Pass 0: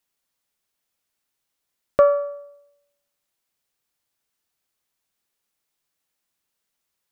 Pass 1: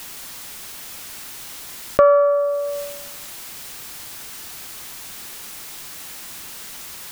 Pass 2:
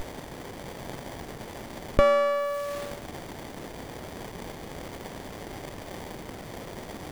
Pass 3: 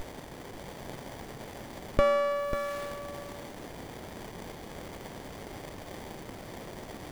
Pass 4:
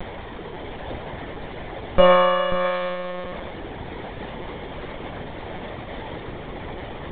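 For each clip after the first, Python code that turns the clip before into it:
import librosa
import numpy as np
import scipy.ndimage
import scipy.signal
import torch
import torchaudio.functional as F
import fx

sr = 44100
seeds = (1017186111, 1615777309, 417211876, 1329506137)

y1 = fx.peak_eq(x, sr, hz=540.0, db=-3.5, octaves=0.71)
y1 = fx.env_flatten(y1, sr, amount_pct=70)
y1 = F.gain(torch.from_numpy(y1), 3.5).numpy()
y2 = fx.high_shelf(y1, sr, hz=5600.0, db=9.0)
y2 = fx.running_max(y2, sr, window=33)
y2 = F.gain(torch.from_numpy(y2), -4.0).numpy()
y3 = y2 + 10.0 ** (-8.0 / 20.0) * np.pad(y2, (int(543 * sr / 1000.0), 0))[:len(y2)]
y3 = F.gain(torch.from_numpy(y3), -4.0).numpy()
y4 = fx.rev_fdn(y3, sr, rt60_s=1.0, lf_ratio=0.7, hf_ratio=0.95, size_ms=50.0, drr_db=-0.5)
y4 = fx.lpc_monotone(y4, sr, seeds[0], pitch_hz=180.0, order=16)
y4 = F.gain(torch.from_numpy(y4), 6.5).numpy()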